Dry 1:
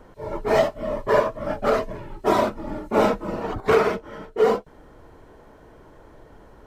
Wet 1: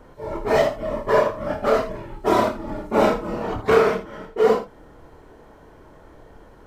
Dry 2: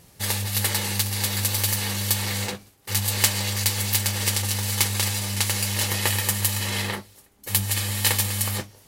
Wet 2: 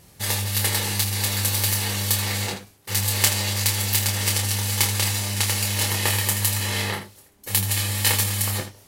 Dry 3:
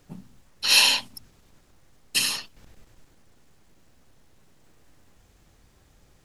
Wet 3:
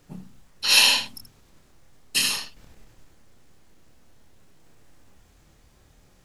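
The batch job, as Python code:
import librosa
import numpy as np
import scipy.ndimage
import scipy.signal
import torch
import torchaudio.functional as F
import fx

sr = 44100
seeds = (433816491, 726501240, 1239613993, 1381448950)

y = fx.room_early_taps(x, sr, ms=(27, 80), db=(-5.5, -10.5))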